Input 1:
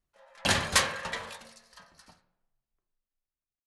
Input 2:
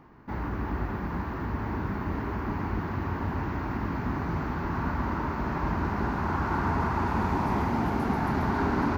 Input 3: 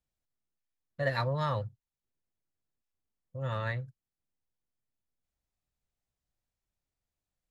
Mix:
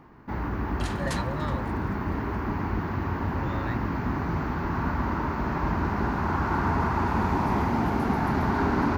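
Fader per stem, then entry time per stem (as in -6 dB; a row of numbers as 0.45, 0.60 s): -14.0, +2.0, -3.0 dB; 0.35, 0.00, 0.00 s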